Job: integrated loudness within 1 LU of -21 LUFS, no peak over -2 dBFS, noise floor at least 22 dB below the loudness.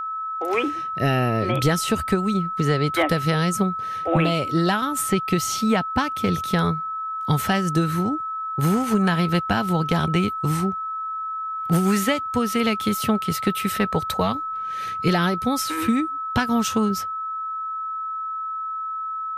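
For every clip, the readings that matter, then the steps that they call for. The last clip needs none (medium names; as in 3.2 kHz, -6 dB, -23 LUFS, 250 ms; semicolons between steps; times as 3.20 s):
steady tone 1.3 kHz; tone level -26 dBFS; loudness -23.0 LUFS; peak level -8.5 dBFS; loudness target -21.0 LUFS
-> band-stop 1.3 kHz, Q 30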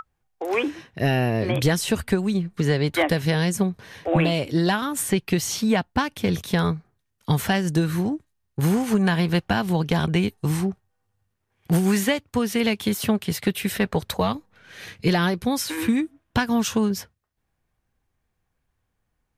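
steady tone not found; loudness -23.5 LUFS; peak level -9.5 dBFS; loudness target -21.0 LUFS
-> trim +2.5 dB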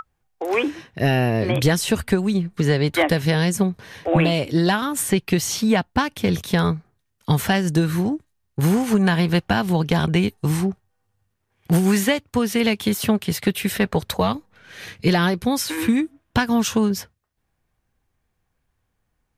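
loudness -21.0 LUFS; peak level -7.0 dBFS; noise floor -73 dBFS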